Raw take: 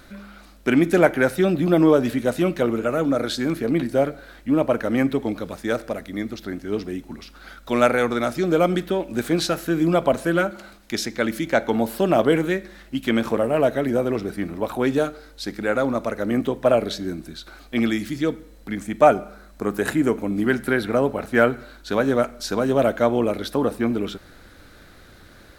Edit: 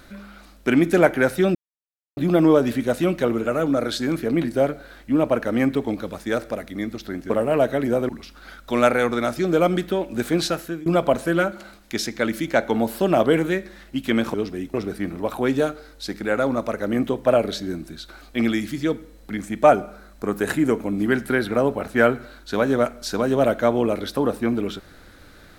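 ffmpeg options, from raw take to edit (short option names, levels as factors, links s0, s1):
-filter_complex "[0:a]asplit=7[s0][s1][s2][s3][s4][s5][s6];[s0]atrim=end=1.55,asetpts=PTS-STARTPTS,afade=t=out:st=1.546:d=0.004:c=hsin,apad=pad_dur=0.62[s7];[s1]atrim=start=1.55:end=6.682,asetpts=PTS-STARTPTS,afade=t=in:d=0.004:c=hsin[s8];[s2]atrim=start=13.328:end=14.122[s9];[s3]atrim=start=7.078:end=9.85,asetpts=PTS-STARTPTS,afade=t=out:st=2.272:d=0.5:c=qsin:silence=0.0749894[s10];[s4]atrim=start=9.85:end=13.332,asetpts=PTS-STARTPTS,afade=t=in:d=0.004:c=hsin:silence=0.0749894[s11];[s5]atrim=start=6.678:end=7.082[s12];[s6]atrim=start=14.118[s13];[s7][s8]concat=n=2:v=0:a=1[s14];[s14][s9]acrossfade=d=0.004:c1=hsin:c2=hsin[s15];[s10][s11]concat=n=2:v=0:a=1[s16];[s15][s16]acrossfade=d=0.004:c1=hsin:c2=hsin[s17];[s17][s12]acrossfade=d=0.004:c1=hsin:c2=hsin[s18];[s18][s13]acrossfade=d=0.004:c1=hsin:c2=hsin"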